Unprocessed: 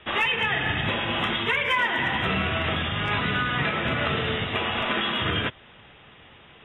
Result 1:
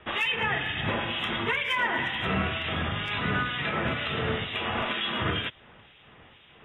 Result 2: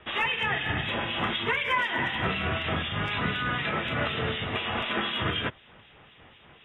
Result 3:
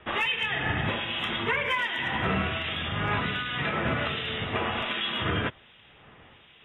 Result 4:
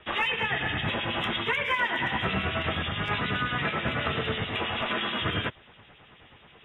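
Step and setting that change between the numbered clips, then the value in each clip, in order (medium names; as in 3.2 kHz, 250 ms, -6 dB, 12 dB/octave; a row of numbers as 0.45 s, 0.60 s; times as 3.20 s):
harmonic tremolo, rate: 2.1 Hz, 4 Hz, 1.3 Hz, 9.3 Hz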